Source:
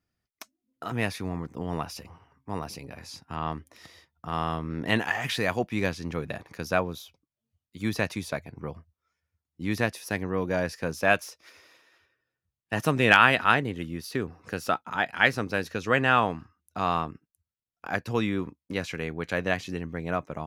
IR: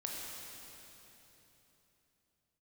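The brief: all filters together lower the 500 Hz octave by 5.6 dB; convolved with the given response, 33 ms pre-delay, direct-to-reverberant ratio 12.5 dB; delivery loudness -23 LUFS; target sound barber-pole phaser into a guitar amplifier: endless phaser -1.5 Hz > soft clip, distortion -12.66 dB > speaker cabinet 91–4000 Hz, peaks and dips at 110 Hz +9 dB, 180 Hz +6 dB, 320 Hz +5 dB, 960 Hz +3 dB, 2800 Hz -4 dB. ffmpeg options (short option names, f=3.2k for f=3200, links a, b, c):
-filter_complex "[0:a]equalizer=f=500:t=o:g=-8.5,asplit=2[a][b];[1:a]atrim=start_sample=2205,adelay=33[c];[b][c]afir=irnorm=-1:irlink=0,volume=-13.5dB[d];[a][d]amix=inputs=2:normalize=0,asplit=2[e][f];[f]afreqshift=-1.5[g];[e][g]amix=inputs=2:normalize=1,asoftclip=threshold=-19.5dB,highpass=91,equalizer=f=110:t=q:w=4:g=9,equalizer=f=180:t=q:w=4:g=6,equalizer=f=320:t=q:w=4:g=5,equalizer=f=960:t=q:w=4:g=3,equalizer=f=2.8k:t=q:w=4:g=-4,lowpass=f=4k:w=0.5412,lowpass=f=4k:w=1.3066,volume=9.5dB"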